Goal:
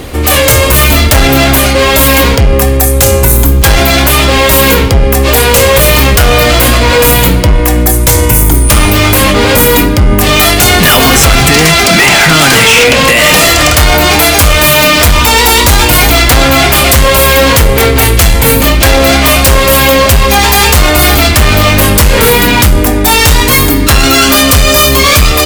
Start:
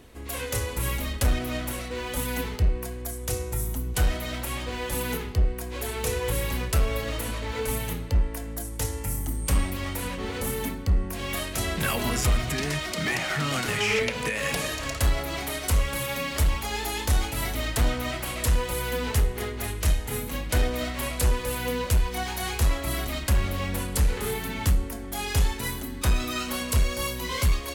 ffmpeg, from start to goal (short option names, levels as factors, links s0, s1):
-af "asetrate=48069,aresample=44100,apsyclip=29.9,volume=0.841"